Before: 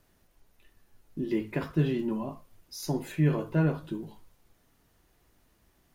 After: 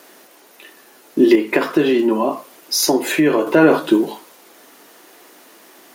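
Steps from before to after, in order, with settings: high-pass 290 Hz 24 dB/octave; 1.35–3.47 s: compression 3:1, threshold -39 dBFS, peak gain reduction 10 dB; loudness maximiser +25.5 dB; trim -1 dB

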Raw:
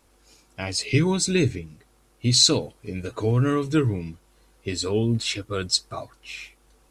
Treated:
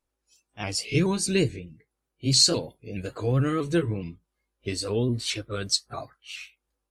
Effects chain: sawtooth pitch modulation +2 st, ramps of 212 ms; spectral noise reduction 21 dB; trim -1.5 dB

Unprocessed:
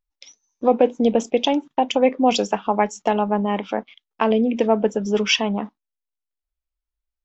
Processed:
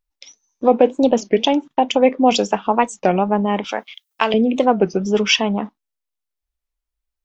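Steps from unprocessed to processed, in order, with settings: 3.64–4.34 s: tilt EQ +4.5 dB/octave; warped record 33 1/3 rpm, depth 250 cents; trim +3 dB

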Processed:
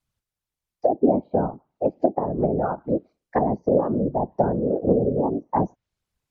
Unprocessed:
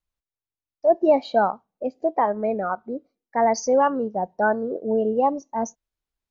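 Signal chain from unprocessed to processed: low-pass that closes with the level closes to 340 Hz, closed at -19.5 dBFS; whisper effect; trim +6 dB

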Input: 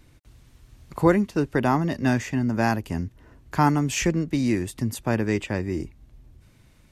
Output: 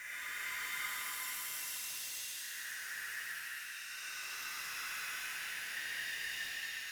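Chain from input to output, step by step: time reversed locally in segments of 196 ms; steep high-pass 1.7 kHz 36 dB/octave; treble shelf 7.7 kHz +11 dB; band-stop 4.5 kHz, Q 11; reverse; compression 10:1, threshold -42 dBFS, peak gain reduction 21.5 dB; reverse; Paulstretch 7.4×, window 0.25 s, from 0.98 s; in parallel at -8 dB: integer overflow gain 44 dB; on the sum: pitch-shifted reverb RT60 2.9 s, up +7 st, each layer -8 dB, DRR -4.5 dB; trim -1.5 dB

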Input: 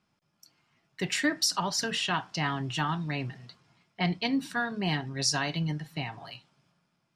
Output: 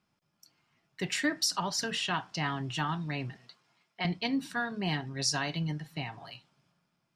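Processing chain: 3.36–4.05 s: high-pass 500 Hz 6 dB/octave; trim -2.5 dB

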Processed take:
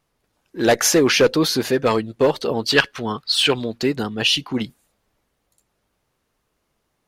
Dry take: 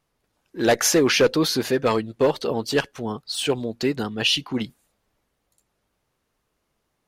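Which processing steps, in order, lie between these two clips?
2.66–3.78 s: high-order bell 2.3 kHz +8 dB 2.5 oct; trim +2.5 dB

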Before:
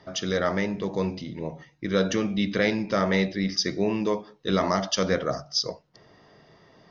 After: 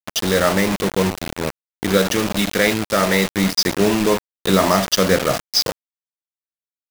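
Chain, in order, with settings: 1.97–3.29 s: bass shelf 430 Hz -5 dB; bit crusher 5-bit; trim +8 dB

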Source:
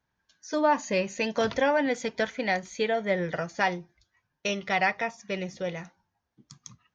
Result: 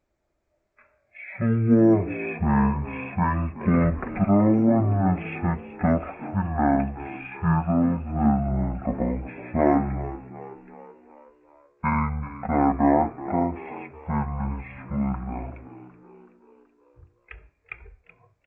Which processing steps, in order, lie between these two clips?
wide varispeed 0.376×; frequency-shifting echo 377 ms, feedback 54%, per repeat +58 Hz, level -16 dB; trim +4.5 dB

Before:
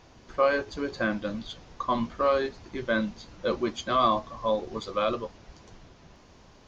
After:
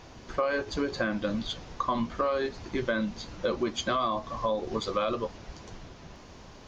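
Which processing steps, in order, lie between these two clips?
in parallel at -1 dB: peak limiter -20.5 dBFS, peak gain reduction 8.5 dB; on the sum: compression 6:1, threshold -25 dBFS, peak gain reduction 10 dB

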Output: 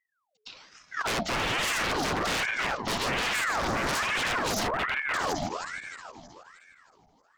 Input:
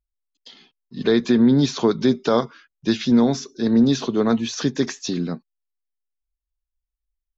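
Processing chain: backward echo that repeats 157 ms, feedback 69%, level -7 dB; 4.67–5.14 s: steep low-pass 1.5 kHz 48 dB/octave; wavefolder -22.5 dBFS; band-passed feedback delay 545 ms, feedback 54%, band-pass 400 Hz, level -21.5 dB; ring modulator with a swept carrier 1.2 kHz, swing 65%, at 1.2 Hz; trim +2 dB

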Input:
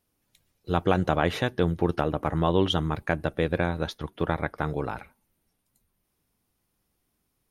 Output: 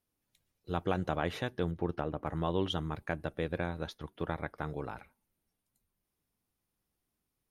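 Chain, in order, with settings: 1.71–2.27 s: treble shelf 3.7 kHz -10 dB; trim -9 dB

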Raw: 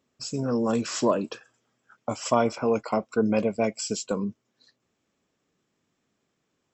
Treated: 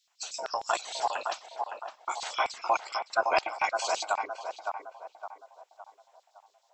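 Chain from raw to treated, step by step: spectral gate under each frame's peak -15 dB weak; 2.58–3.60 s: transient shaper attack +3 dB, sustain -6 dB; LFO high-pass square 6.5 Hz 720–4100 Hz; band-passed feedback delay 562 ms, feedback 45%, band-pass 760 Hz, level -4 dB; trim +6.5 dB

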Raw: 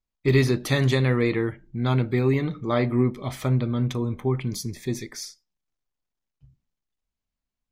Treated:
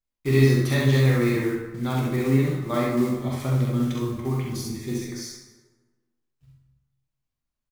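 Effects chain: block-companded coder 5-bit; doubling 12 ms -13 dB; on a send: early reflections 45 ms -5 dB, 67 ms -3.5 dB; on the sum: plate-style reverb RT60 1.3 s, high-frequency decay 0.6×, DRR 1.5 dB; trim -5.5 dB

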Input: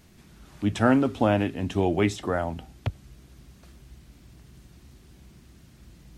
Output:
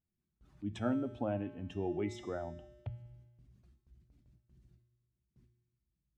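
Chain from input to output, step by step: spectral contrast enhancement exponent 1.5; gate with hold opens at -42 dBFS; feedback comb 120 Hz, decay 1.3 s, harmonics odd, mix 80%; de-hum 111.1 Hz, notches 3

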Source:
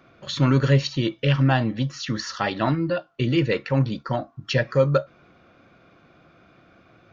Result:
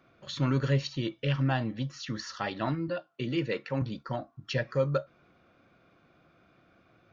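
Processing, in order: 2.88–3.82 s: high-pass 140 Hz; trim -8.5 dB

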